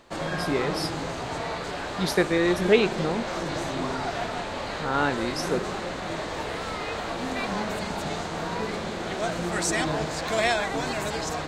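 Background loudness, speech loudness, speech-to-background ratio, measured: -29.5 LUFS, -26.5 LUFS, 3.0 dB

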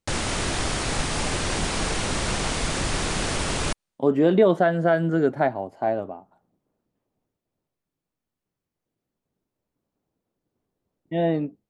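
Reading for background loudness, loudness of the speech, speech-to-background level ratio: -26.0 LUFS, -22.5 LUFS, 3.5 dB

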